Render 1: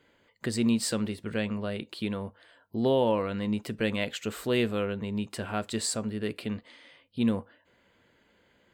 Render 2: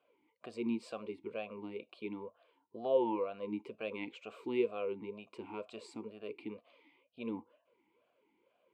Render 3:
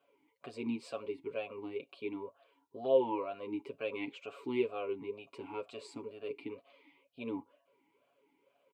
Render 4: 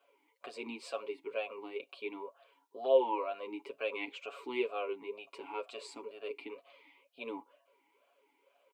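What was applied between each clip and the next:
vowel sweep a-u 2.1 Hz; gain +2.5 dB
comb 7.2 ms, depth 74%
HPF 500 Hz 12 dB/oct; gain +4 dB

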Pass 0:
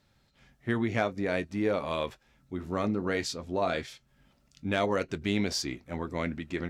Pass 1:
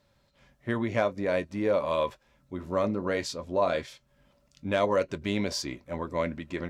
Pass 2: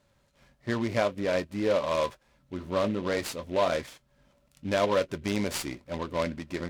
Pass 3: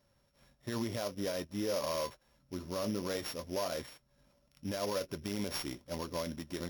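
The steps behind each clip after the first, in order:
small resonant body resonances 570/1000 Hz, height 11 dB, ringing for 45 ms; gain -1 dB
noise-modulated delay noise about 2300 Hz, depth 0.04 ms
sample sorter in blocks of 8 samples; limiter -21.5 dBFS, peak gain reduction 9 dB; gain -4.5 dB

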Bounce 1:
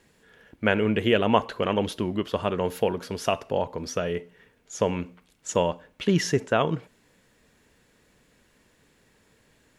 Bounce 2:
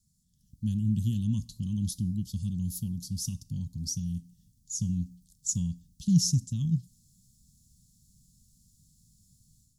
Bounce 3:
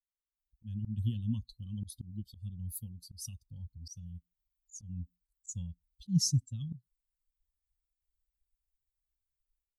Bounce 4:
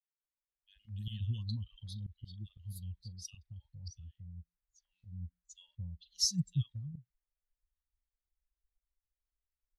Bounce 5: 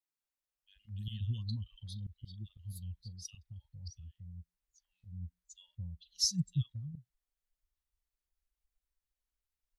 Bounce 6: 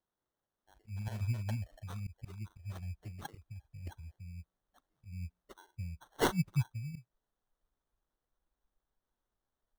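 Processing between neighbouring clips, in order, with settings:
inverse Chebyshev band-stop 400–2400 Hz, stop band 50 dB; AGC gain up to 10 dB; gain -5 dB
per-bin expansion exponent 2; auto swell 0.145 s
ten-band EQ 250 Hz -11 dB, 2000 Hz +10 dB, 4000 Hz +9 dB, 8000 Hz -5 dB; low-pass opened by the level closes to 970 Hz, open at -35.5 dBFS; three bands offset in time highs, mids, lows 40/230 ms, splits 850/2600 Hz; gain -1 dB
vibrato 0.94 Hz 23 cents
sample-and-hold 18×; gain +1.5 dB

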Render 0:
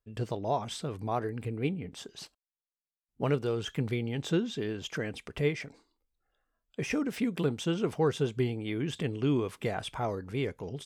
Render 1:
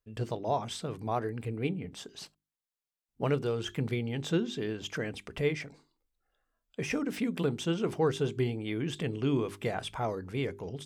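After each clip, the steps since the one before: notches 50/100/150/200/250/300/350/400 Hz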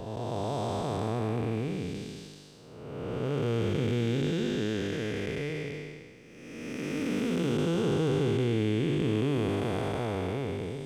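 time blur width 0.723 s; gain +7.5 dB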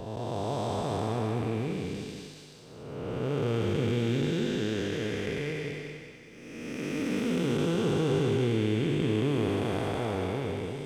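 thinning echo 0.188 s, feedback 50%, high-pass 420 Hz, level -6 dB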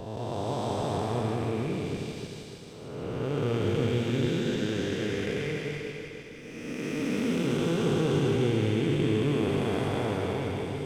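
regenerating reverse delay 0.152 s, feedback 72%, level -7.5 dB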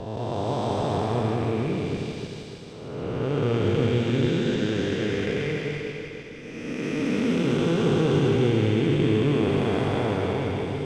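air absorption 59 m; gain +4.5 dB

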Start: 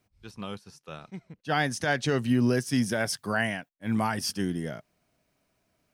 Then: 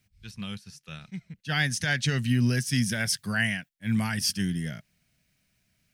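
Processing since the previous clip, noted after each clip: band shelf 590 Hz -14 dB 2.5 oct; gain +4.5 dB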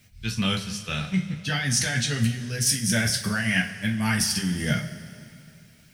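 negative-ratio compressor -33 dBFS, ratio -1; two-slope reverb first 0.27 s, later 2.6 s, from -18 dB, DRR 0.5 dB; gain +6 dB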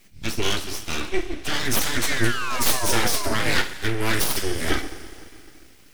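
painted sound fall, 2.02–3.58, 330–2200 Hz -30 dBFS; full-wave rectifier; gain +4.5 dB

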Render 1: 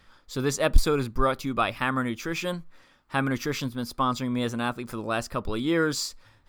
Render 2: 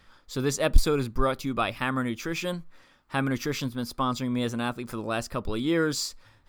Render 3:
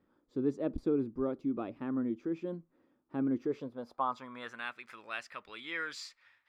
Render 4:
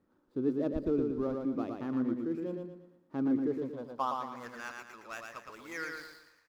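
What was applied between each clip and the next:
dynamic EQ 1200 Hz, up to -3 dB, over -36 dBFS, Q 0.83
band-pass sweep 310 Hz -> 2100 Hz, 3.34–4.7
median filter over 15 samples; on a send: feedback echo 0.115 s, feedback 40%, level -4 dB

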